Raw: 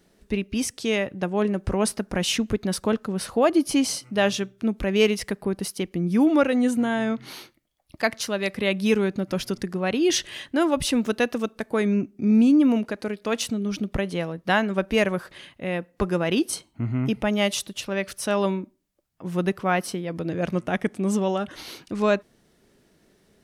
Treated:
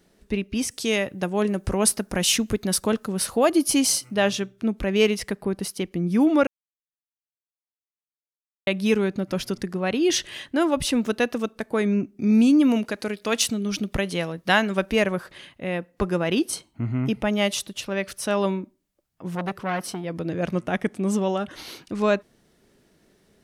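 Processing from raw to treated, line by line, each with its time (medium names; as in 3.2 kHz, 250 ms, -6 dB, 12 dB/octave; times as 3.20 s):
0.71–4.14 s: treble shelf 5.8 kHz +12 dB
6.47–8.67 s: mute
12.19–14.92 s: treble shelf 2.2 kHz +8 dB
19.35–20.04 s: transformer saturation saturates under 1.3 kHz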